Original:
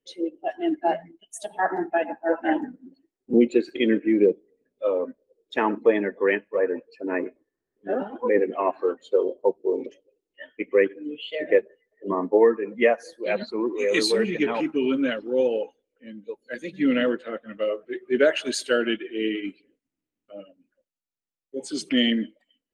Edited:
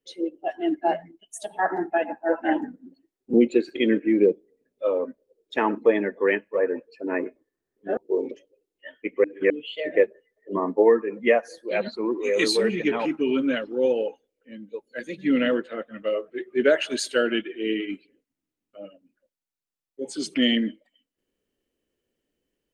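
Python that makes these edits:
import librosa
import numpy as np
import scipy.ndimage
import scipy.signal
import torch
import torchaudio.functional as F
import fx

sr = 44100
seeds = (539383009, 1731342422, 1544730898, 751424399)

y = fx.edit(x, sr, fx.cut(start_s=7.97, length_s=1.55),
    fx.reverse_span(start_s=10.79, length_s=0.26), tone=tone)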